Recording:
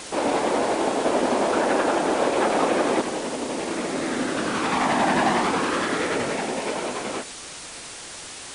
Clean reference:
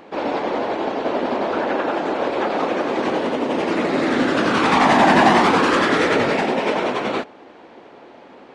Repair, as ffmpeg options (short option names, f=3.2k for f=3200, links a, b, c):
-af "afwtdn=0.018,asetnsamples=n=441:p=0,asendcmd='3.01 volume volume 7.5dB',volume=0dB"